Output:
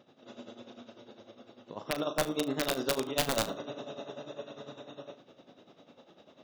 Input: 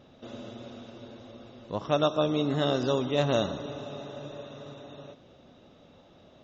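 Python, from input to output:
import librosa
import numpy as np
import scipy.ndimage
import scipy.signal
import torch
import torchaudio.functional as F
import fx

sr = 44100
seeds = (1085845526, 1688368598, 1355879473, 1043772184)

p1 = scipy.signal.sosfilt(scipy.signal.butter(2, 200.0, 'highpass', fs=sr, output='sos'), x)
p2 = fx.rider(p1, sr, range_db=4, speed_s=2.0)
p3 = p1 + F.gain(torch.from_numpy(p2), 2.0).numpy()
p4 = p3 * (1.0 - 0.88 / 2.0 + 0.88 / 2.0 * np.cos(2.0 * np.pi * 10.0 * (np.arange(len(p3)) / sr)))
p5 = (np.mod(10.0 ** (12.0 / 20.0) * p4 + 1.0, 2.0) - 1.0) / 10.0 ** (12.0 / 20.0)
p6 = fx.room_flutter(p5, sr, wall_m=6.4, rt60_s=0.21)
y = F.gain(torch.from_numpy(p6), -7.0).numpy()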